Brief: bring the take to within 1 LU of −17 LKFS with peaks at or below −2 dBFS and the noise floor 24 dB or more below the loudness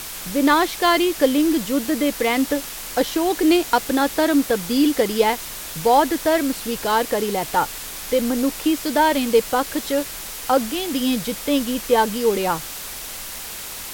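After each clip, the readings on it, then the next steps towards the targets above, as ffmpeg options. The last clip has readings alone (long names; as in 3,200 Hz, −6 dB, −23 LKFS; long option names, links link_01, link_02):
background noise floor −33 dBFS; target noise floor −45 dBFS; integrated loudness −20.5 LKFS; sample peak −4.0 dBFS; target loudness −17.0 LKFS
→ -af "afftdn=noise_reduction=12:noise_floor=-33"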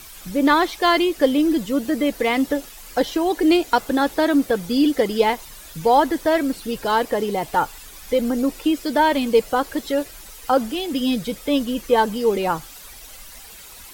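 background noise floor −41 dBFS; target noise floor −45 dBFS
→ -af "afftdn=noise_reduction=6:noise_floor=-41"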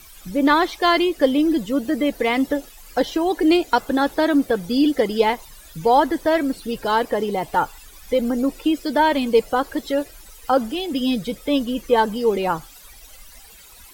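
background noise floor −45 dBFS; integrated loudness −20.5 LKFS; sample peak −4.5 dBFS; target loudness −17.0 LKFS
→ -af "volume=3.5dB,alimiter=limit=-2dB:level=0:latency=1"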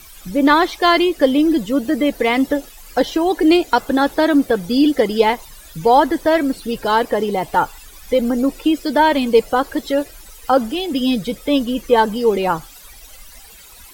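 integrated loudness −17.0 LKFS; sample peak −2.0 dBFS; background noise floor −42 dBFS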